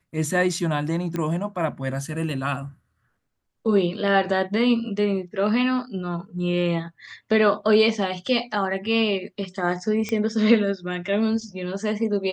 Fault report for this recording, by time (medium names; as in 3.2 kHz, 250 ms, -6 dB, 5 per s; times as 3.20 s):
1.16 s: pop -15 dBFS
10.09 s: pop -14 dBFS